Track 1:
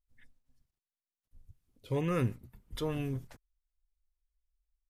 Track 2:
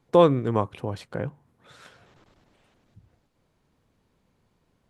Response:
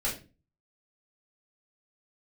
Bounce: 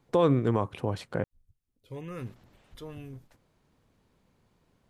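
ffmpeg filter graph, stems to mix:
-filter_complex "[0:a]volume=-8.5dB[link_01];[1:a]volume=0.5dB,asplit=3[link_02][link_03][link_04];[link_02]atrim=end=1.24,asetpts=PTS-STARTPTS,afade=type=out:start_time=1.236:duration=0.004:curve=hsin[link_05];[link_03]atrim=start=1.24:end=2.17,asetpts=PTS-STARTPTS,volume=0[link_06];[link_04]atrim=start=2.17,asetpts=PTS-STARTPTS,afade=type=in:duration=0.004:curve=hsin[link_07];[link_05][link_06][link_07]concat=n=3:v=0:a=1[link_08];[link_01][link_08]amix=inputs=2:normalize=0,alimiter=limit=-13.5dB:level=0:latency=1:release=50"

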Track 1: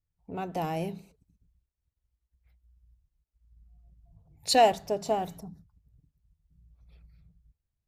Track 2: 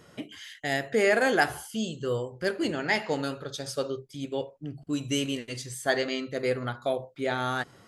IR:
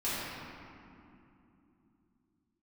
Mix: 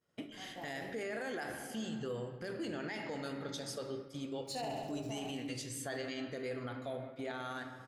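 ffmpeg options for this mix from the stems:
-filter_complex "[0:a]aeval=exprs='sgn(val(0))*max(abs(val(0))-0.00631,0)':channel_layout=same,flanger=delay=19.5:depth=4.7:speed=0.26,volume=-11.5dB,asplit=2[link_01][link_02];[link_02]volume=-3.5dB[link_03];[1:a]acompressor=threshold=-38dB:ratio=2,volume=-4dB,asplit=2[link_04][link_05];[link_05]volume=-14dB[link_06];[2:a]atrim=start_sample=2205[link_07];[link_06][link_07]afir=irnorm=-1:irlink=0[link_08];[link_03]aecho=0:1:67|134|201|268|335|402|469|536:1|0.56|0.314|0.176|0.0983|0.0551|0.0308|0.0173[link_09];[link_01][link_04][link_08][link_09]amix=inputs=4:normalize=0,agate=range=-33dB:threshold=-43dB:ratio=3:detection=peak,alimiter=level_in=7.5dB:limit=-24dB:level=0:latency=1:release=24,volume=-7.5dB"

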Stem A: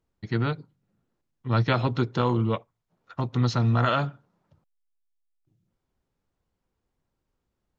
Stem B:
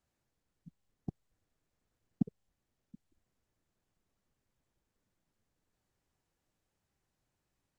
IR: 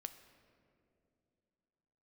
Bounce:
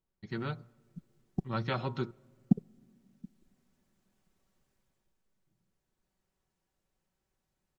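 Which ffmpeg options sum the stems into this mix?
-filter_complex "[0:a]bandreject=frequency=117.9:width_type=h:width=4,bandreject=frequency=235.8:width_type=h:width=4,bandreject=frequency=353.7:width_type=h:width=4,bandreject=frequency=471.6:width_type=h:width=4,bandreject=frequency=589.5:width_type=h:width=4,bandreject=frequency=707.4:width_type=h:width=4,bandreject=frequency=825.3:width_type=h:width=4,bandreject=frequency=943.2:width_type=h:width=4,bandreject=frequency=1061.1:width_type=h:width=4,bandreject=frequency=1179:width_type=h:width=4,bandreject=frequency=1296.9:width_type=h:width=4,bandreject=frequency=1414.8:width_type=h:width=4,volume=-10.5dB,asplit=3[link_01][link_02][link_03];[link_01]atrim=end=2.11,asetpts=PTS-STARTPTS,afade=type=out:start_time=2.106:duration=0.004:curve=hsin[link_04];[link_02]atrim=start=2.11:end=5.05,asetpts=PTS-STARTPTS,volume=0[link_05];[link_03]atrim=start=5.05,asetpts=PTS-STARTPTS,afade=type=in:duration=0.004:curve=hsin[link_06];[link_04][link_05][link_06]concat=n=3:v=0:a=1,asplit=2[link_07][link_08];[link_08]volume=-12dB[link_09];[1:a]acontrast=57,adelay=300,volume=-1.5dB,afade=type=out:start_time=4.64:duration=0.58:silence=0.398107,asplit=2[link_10][link_11];[link_11]volume=-15dB[link_12];[2:a]atrim=start_sample=2205[link_13];[link_09][link_12]amix=inputs=2:normalize=0[link_14];[link_14][link_13]afir=irnorm=-1:irlink=0[link_15];[link_07][link_10][link_15]amix=inputs=3:normalize=0,aecho=1:1:5.3:0.4"

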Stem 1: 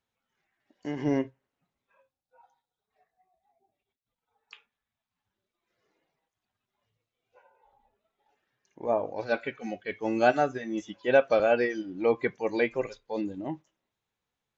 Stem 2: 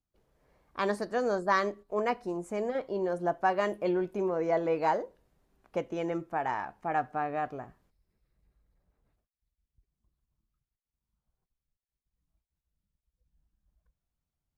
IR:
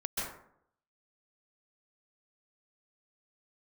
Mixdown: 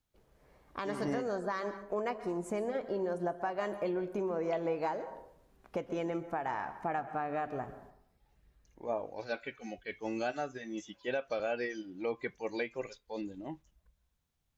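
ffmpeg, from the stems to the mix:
-filter_complex "[0:a]highshelf=frequency=3000:gain=8,volume=-8dB[link_01];[1:a]acompressor=threshold=-36dB:ratio=4,volume=2.5dB,asplit=2[link_02][link_03];[link_03]volume=-14.5dB[link_04];[2:a]atrim=start_sample=2205[link_05];[link_04][link_05]afir=irnorm=-1:irlink=0[link_06];[link_01][link_02][link_06]amix=inputs=3:normalize=0,alimiter=limit=-23.5dB:level=0:latency=1:release=210"

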